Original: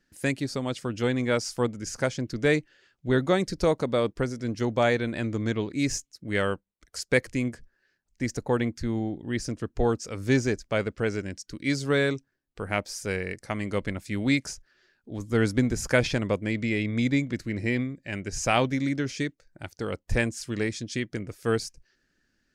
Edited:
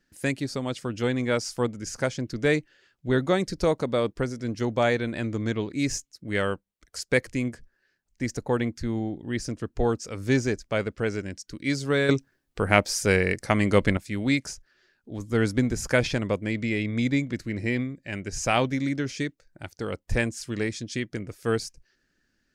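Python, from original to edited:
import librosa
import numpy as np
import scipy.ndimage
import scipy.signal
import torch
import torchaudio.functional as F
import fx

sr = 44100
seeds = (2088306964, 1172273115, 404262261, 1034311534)

y = fx.edit(x, sr, fx.clip_gain(start_s=12.09, length_s=1.88, db=8.5), tone=tone)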